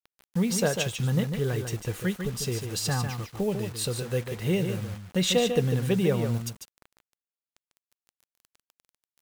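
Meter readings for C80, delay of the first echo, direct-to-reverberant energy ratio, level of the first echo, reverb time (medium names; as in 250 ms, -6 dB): no reverb, 147 ms, no reverb, -7.0 dB, no reverb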